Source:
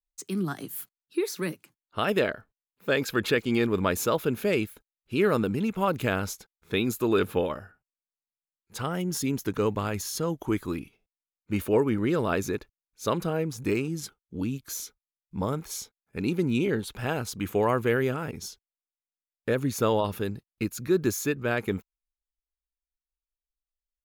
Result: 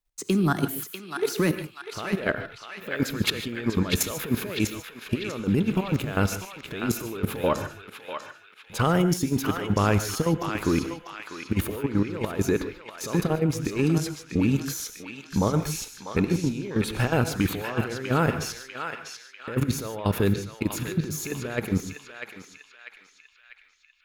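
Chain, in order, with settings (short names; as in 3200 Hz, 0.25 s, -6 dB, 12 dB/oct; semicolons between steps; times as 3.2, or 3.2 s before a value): high shelf 3100 Hz -4 dB; negative-ratio compressor -31 dBFS, ratio -1; in parallel at 0 dB: limiter -25 dBFS, peak gain reduction 9.5 dB; on the sum: level quantiser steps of 13 dB; on a send: narrowing echo 0.645 s, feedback 58%, band-pass 2600 Hz, level -3 dB; on the sum: non-linear reverb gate 0.17 s rising, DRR 10.5 dB; gain +5 dB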